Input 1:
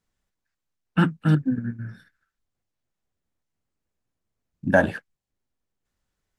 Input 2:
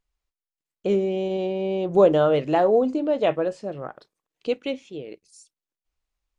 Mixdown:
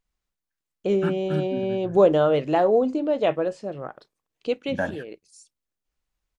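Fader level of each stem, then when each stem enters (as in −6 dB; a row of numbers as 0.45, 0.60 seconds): −9.0, −0.5 decibels; 0.05, 0.00 seconds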